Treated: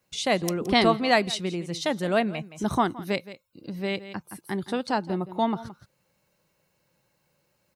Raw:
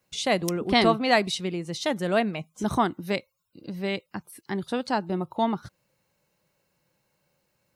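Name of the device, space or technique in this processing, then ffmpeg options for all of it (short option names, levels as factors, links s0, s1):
ducked delay: -filter_complex "[0:a]asplit=3[s0][s1][s2];[s1]adelay=169,volume=0.708[s3];[s2]apad=whole_len=349465[s4];[s3][s4]sidechaincompress=threshold=0.0126:ratio=12:attack=31:release=481[s5];[s0][s5]amix=inputs=2:normalize=0"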